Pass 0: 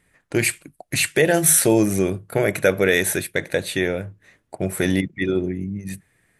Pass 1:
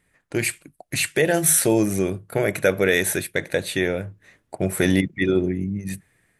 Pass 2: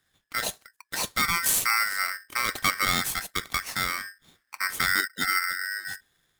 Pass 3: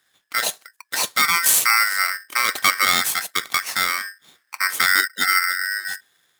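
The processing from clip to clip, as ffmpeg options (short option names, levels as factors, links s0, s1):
-af "dynaudnorm=f=350:g=5:m=3.76,volume=0.668"
-af "aeval=exprs='val(0)*sgn(sin(2*PI*1700*n/s))':c=same,volume=0.501"
-af "highpass=f=550:p=1,volume=2.37"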